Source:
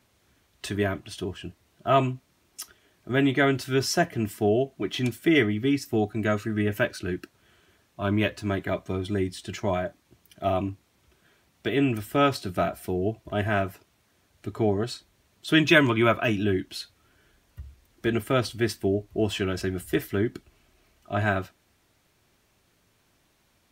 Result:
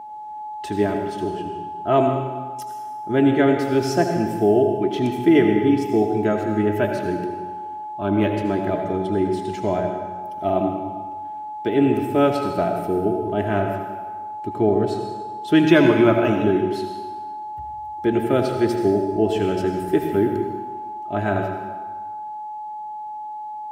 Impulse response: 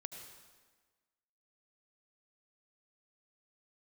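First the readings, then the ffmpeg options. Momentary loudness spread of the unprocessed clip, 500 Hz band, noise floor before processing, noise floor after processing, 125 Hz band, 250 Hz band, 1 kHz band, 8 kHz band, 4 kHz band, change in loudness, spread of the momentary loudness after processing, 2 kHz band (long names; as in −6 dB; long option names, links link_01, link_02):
14 LU, +7.5 dB, −67 dBFS, −32 dBFS, +2.0 dB, +7.0 dB, +8.5 dB, can't be measured, −3.0 dB, +5.0 dB, 16 LU, −1.5 dB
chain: -filter_complex "[0:a]aeval=exprs='val(0)+0.0178*sin(2*PI*850*n/s)':channel_layout=same,equalizer=frequency=360:width_type=o:width=2.5:gain=11.5[link_01];[1:a]atrim=start_sample=2205[link_02];[link_01][link_02]afir=irnorm=-1:irlink=0"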